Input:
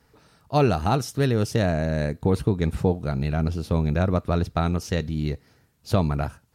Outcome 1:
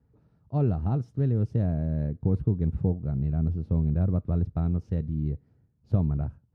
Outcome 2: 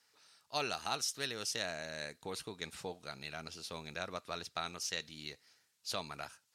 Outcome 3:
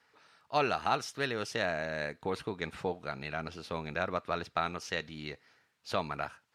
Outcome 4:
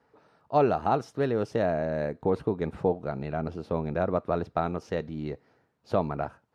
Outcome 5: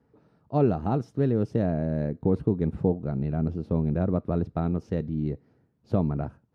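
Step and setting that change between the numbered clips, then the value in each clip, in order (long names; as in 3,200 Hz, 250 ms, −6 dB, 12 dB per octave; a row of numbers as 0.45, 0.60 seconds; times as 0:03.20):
resonant band-pass, frequency: 100, 5,700, 2,100, 670, 260 Hertz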